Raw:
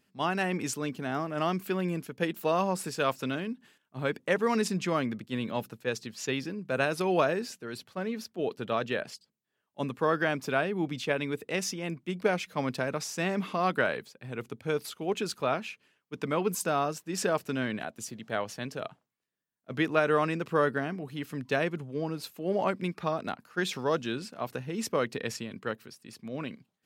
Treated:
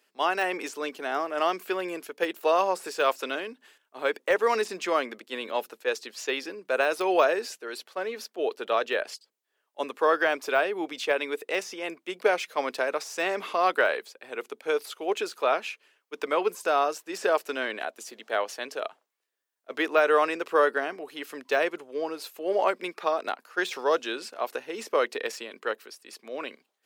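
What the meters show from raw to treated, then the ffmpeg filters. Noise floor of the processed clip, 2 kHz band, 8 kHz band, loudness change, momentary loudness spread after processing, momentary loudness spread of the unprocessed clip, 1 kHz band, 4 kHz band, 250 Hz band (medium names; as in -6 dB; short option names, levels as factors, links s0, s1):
-78 dBFS, +4.5 dB, -2.0 dB, +3.0 dB, 13 LU, 11 LU, +5.0 dB, +3.0 dB, -5.0 dB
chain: -af "highpass=f=380:w=0.5412,highpass=f=380:w=1.3066,deesser=0.95,volume=1.78"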